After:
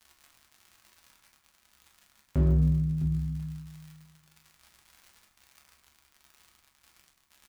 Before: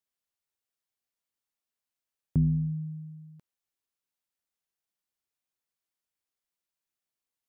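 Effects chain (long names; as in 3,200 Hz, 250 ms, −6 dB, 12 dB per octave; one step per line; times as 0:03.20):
single-tap delay 659 ms −14.5 dB
in parallel at −3 dB: downward compressor, threshold −34 dBFS, peak gain reduction 12.5 dB
on the sum: surface crackle 100 per second −45 dBFS
graphic EQ with 10 bands 125 Hz −4 dB, 250 Hz −4 dB, 500 Hz −9 dB
hard clipping −26 dBFS, distortion −14 dB
convolution reverb RT60 1.0 s, pre-delay 7 ms, DRR −1 dB
level +3.5 dB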